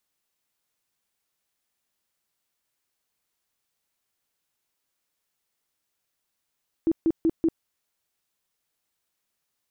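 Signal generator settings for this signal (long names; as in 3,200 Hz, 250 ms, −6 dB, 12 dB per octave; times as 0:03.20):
tone bursts 327 Hz, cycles 15, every 0.19 s, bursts 4, −17.5 dBFS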